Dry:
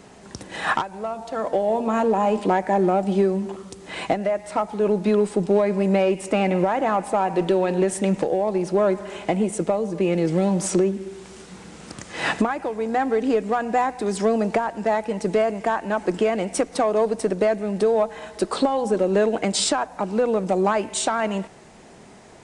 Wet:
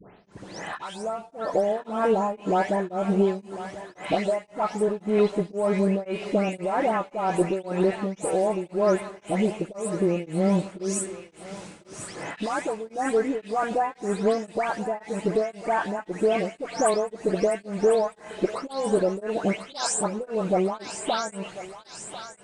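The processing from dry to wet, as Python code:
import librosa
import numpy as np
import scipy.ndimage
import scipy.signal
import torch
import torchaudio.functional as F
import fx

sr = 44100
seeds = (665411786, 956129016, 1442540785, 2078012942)

y = fx.spec_delay(x, sr, highs='late', ms=320)
y = fx.echo_thinned(y, sr, ms=1046, feedback_pct=73, hz=920.0, wet_db=-10)
y = y * np.abs(np.cos(np.pi * 1.9 * np.arange(len(y)) / sr))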